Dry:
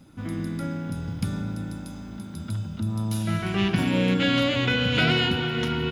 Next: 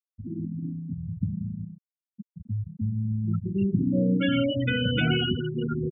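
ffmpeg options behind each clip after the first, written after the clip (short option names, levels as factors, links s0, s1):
-filter_complex "[0:a]afftfilt=real='re*gte(hypot(re,im),0.2)':imag='im*gte(hypot(re,im),0.2)':win_size=1024:overlap=0.75,acrossover=split=430[s0][s1];[s1]acompressor=threshold=0.0562:ratio=6[s2];[s0][s2]amix=inputs=2:normalize=0"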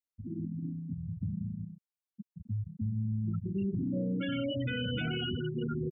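-af "alimiter=limit=0.0841:level=0:latency=1:release=22,volume=0.596"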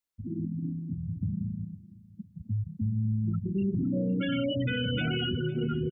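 -af "aecho=1:1:508|1016|1524:0.119|0.0464|0.0181,volume=1.58"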